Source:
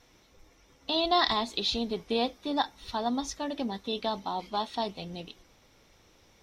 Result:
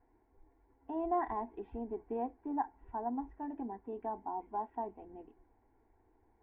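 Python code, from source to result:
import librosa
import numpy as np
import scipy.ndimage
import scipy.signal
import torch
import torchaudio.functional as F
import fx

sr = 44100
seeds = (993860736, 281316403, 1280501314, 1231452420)

y = scipy.signal.sosfilt(scipy.signal.butter(4, 1300.0, 'lowpass', fs=sr, output='sos'), x)
y = fx.fixed_phaser(y, sr, hz=830.0, stages=8)
y = F.gain(torch.from_numpy(y), -4.5).numpy()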